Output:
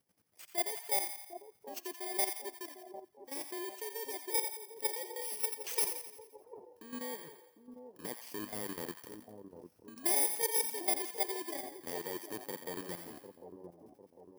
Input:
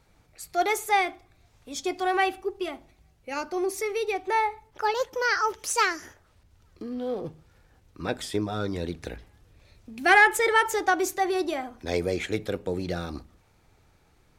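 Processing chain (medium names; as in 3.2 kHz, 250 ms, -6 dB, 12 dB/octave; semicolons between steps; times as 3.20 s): bit-reversed sample order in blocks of 32 samples; transient shaper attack +1 dB, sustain -12 dB; high-pass 190 Hz 12 dB/octave; level held to a coarse grid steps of 11 dB; two-band feedback delay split 820 Hz, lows 751 ms, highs 86 ms, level -8 dB; trim -7 dB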